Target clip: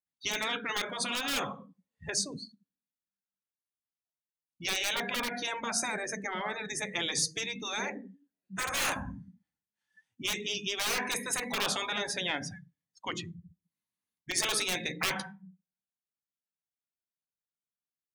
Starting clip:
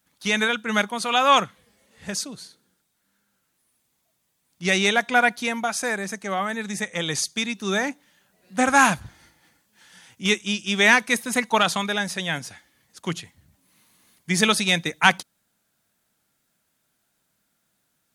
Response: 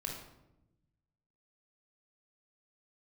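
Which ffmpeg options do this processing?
-filter_complex "[0:a]asplit=2[s0][s1];[1:a]atrim=start_sample=2205,asetrate=70560,aresample=44100,lowshelf=f=330:g=3.5[s2];[s1][s2]afir=irnorm=-1:irlink=0,volume=0.473[s3];[s0][s3]amix=inputs=2:normalize=0,afftdn=nr=35:nf=-35,aeval=exprs='1.06*(cos(1*acos(clip(val(0)/1.06,-1,1)))-cos(1*PI/2))+0.168*(cos(5*acos(clip(val(0)/1.06,-1,1)))-cos(5*PI/2))':c=same,asplit=2[s4][s5];[s5]aeval=exprs='(mod(2*val(0)+1,2)-1)/2':c=same,volume=0.355[s6];[s4][s6]amix=inputs=2:normalize=0,acompressor=threshold=0.126:ratio=2,afftfilt=real='re*lt(hypot(re,im),0.398)':imag='im*lt(hypot(re,im),0.398)':win_size=1024:overlap=0.75,volume=0.398"

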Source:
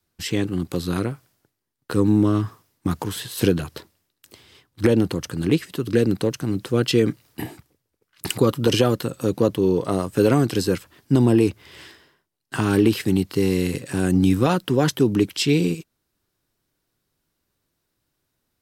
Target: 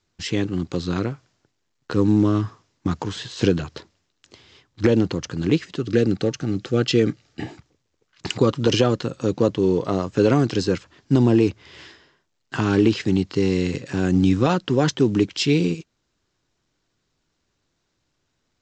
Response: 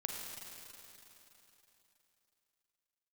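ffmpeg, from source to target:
-filter_complex "[0:a]asettb=1/sr,asplit=3[s0][s1][s2];[s0]atrim=end=5.764[s3];[s1]atrim=start=5.76:end=7.47,asetpts=PTS-STARTPTS,afade=t=in:d=0.004:c=qsin,afade=t=out:st=1.706:d=0.004:c=qsin,asuperstop=centerf=1000:order=20:qfactor=5.1[s4];[s2]atrim=start=7.466[s5];[s3][s4]acrossfade=d=0.004:c1=hsin:c2=qsin[s6];[s6][s5]acrossfade=d=0.004:c1=qsin:c2=hsin" -ar 16000 -c:a pcm_mulaw

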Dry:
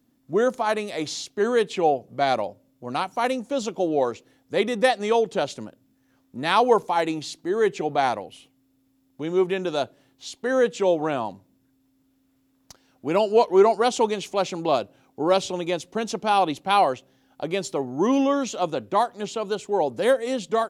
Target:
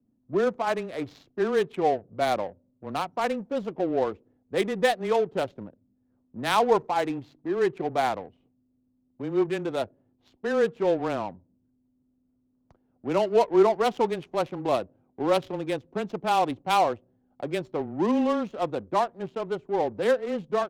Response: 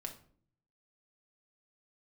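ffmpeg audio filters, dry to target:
-af "afreqshift=-13,adynamicsmooth=sensitivity=3:basefreq=610,volume=0.708"

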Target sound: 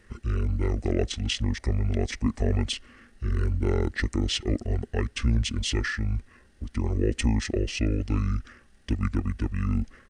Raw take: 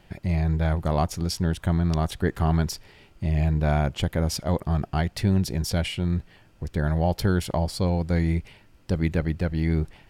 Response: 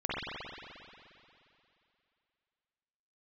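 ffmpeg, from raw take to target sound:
-af "equalizer=f=100:t=o:w=0.33:g=3,equalizer=f=250:t=o:w=0.33:g=-11,equalizer=f=400:t=o:w=0.33:g=8,equalizer=f=630:t=o:w=0.33:g=3,equalizer=f=1600:t=o:w=0.33:g=-9,equalizer=f=3150:t=o:w=0.33:g=7,equalizer=f=12500:t=o:w=0.33:g=-5,asetrate=26222,aresample=44100,atempo=1.68179,crystalizer=i=2.5:c=0,volume=0.75"

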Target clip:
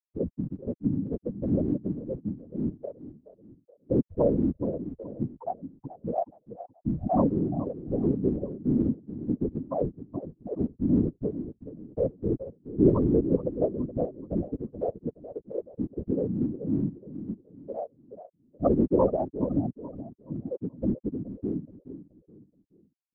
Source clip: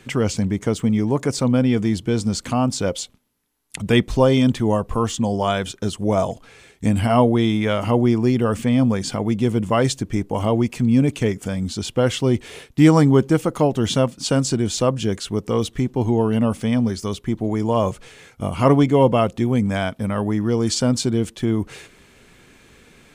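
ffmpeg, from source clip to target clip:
-filter_complex "[0:a]afftfilt=real='re*gte(hypot(re,im),0.891)':imag='im*gte(hypot(re,im),0.891)':win_size=1024:overlap=0.75,acrossover=split=130[s0][s1];[s0]acompressor=threshold=0.0126:ratio=20[s2];[s2][s1]amix=inputs=2:normalize=0,aecho=1:1:425|850|1275|1700:0.237|0.083|0.029|0.0102,afftfilt=real='hypot(re,im)*cos(2*PI*random(0))':imag='hypot(re,im)*sin(2*PI*random(1))':win_size=512:overlap=0.75"

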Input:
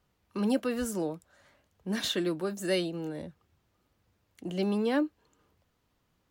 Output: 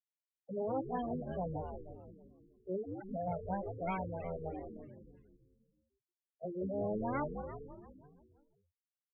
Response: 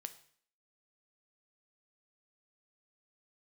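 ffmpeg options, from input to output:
-filter_complex "[0:a]aeval=exprs='abs(val(0))':c=same,highpass=f=160:w=0.5412,highpass=f=160:w=1.3066,afftfilt=real='re*gte(hypot(re,im),0.0447)':imag='im*gte(hypot(re,im),0.0447)':win_size=1024:overlap=0.75,atempo=0.69,acompressor=threshold=0.0141:ratio=20,asplit=2[s0][s1];[s1]asplit=8[s2][s3][s4][s5][s6][s7][s8][s9];[s2]adelay=172,afreqshift=-87,volume=0.473[s10];[s3]adelay=344,afreqshift=-174,volume=0.275[s11];[s4]adelay=516,afreqshift=-261,volume=0.158[s12];[s5]adelay=688,afreqshift=-348,volume=0.0923[s13];[s6]adelay=860,afreqshift=-435,volume=0.0537[s14];[s7]adelay=1032,afreqshift=-522,volume=0.0309[s15];[s8]adelay=1204,afreqshift=-609,volume=0.018[s16];[s9]adelay=1376,afreqshift=-696,volume=0.0105[s17];[s10][s11][s12][s13][s14][s15][s16][s17]amix=inputs=8:normalize=0[s18];[s0][s18]amix=inputs=2:normalize=0,afftfilt=real='re*lt(b*sr/1024,480*pow(3500/480,0.5+0.5*sin(2*PI*3.1*pts/sr)))':imag='im*lt(b*sr/1024,480*pow(3500/480,0.5+0.5*sin(2*PI*3.1*pts/sr)))':win_size=1024:overlap=0.75,volume=1.58"

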